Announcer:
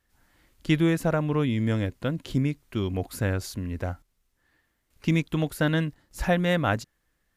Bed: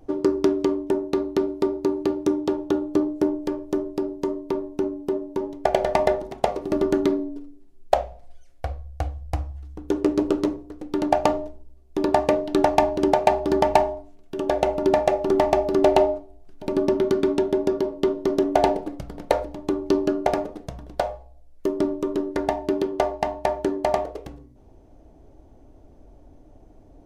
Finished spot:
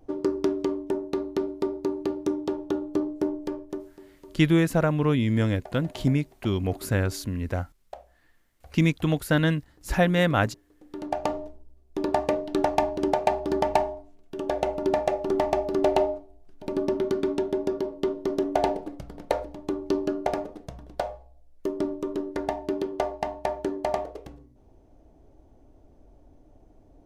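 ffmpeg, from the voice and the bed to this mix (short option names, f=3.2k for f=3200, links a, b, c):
-filter_complex "[0:a]adelay=3700,volume=2dB[a];[1:a]volume=12.5dB,afade=t=out:st=3.56:d=0.39:silence=0.133352,afade=t=in:st=10.73:d=0.74:silence=0.133352[b];[a][b]amix=inputs=2:normalize=0"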